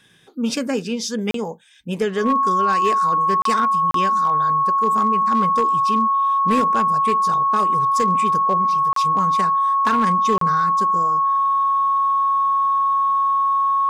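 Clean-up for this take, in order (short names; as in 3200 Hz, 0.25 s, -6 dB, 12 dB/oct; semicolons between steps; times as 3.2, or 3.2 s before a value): clip repair -11.5 dBFS; notch 1100 Hz, Q 30; interpolate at 1.31/3.42/3.91/8.93/10.38, 33 ms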